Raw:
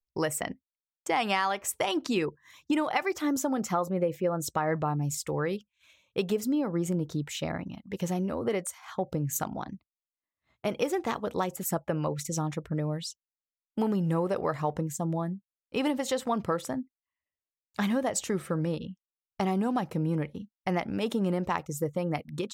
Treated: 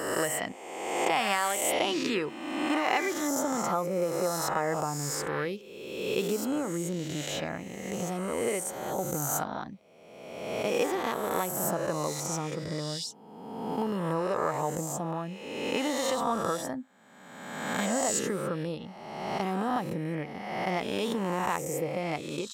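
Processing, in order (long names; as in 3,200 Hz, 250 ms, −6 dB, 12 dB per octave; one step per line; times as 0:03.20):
peak hold with a rise ahead of every peak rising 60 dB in 1.47 s
low-shelf EQ 140 Hz −7.5 dB
level −3 dB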